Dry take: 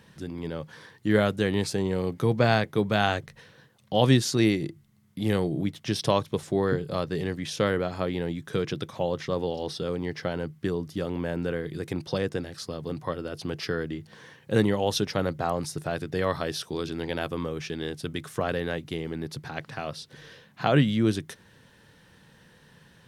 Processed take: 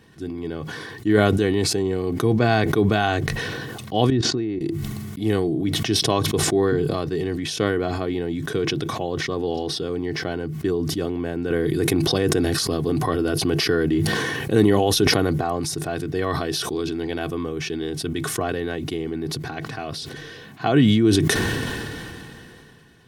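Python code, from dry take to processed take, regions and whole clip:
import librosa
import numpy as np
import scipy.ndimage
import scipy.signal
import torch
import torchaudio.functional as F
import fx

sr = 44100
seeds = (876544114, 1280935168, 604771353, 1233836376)

y = fx.chain(x, sr, fx.level_steps(step_db=15),
    fx.spacing_loss(db_at_10k=30), at=(4.1, 4.61))
y = fx.chain(y, sr, fx.peak_eq(hz=11000.0, db=7.5, octaves=0.39),
    fx.env_flatten(amount_pct=50), at=(11.5, 15.41))
y = fx.peak_eq(y, sr, hz=210.0, db=7.0, octaves=1.7)
y = y + 0.6 * np.pad(y, (int(2.7 * sr / 1000.0), 0))[:len(y)]
y = fx.sustainer(y, sr, db_per_s=21.0)
y = y * 10.0 ** (-1.0 / 20.0)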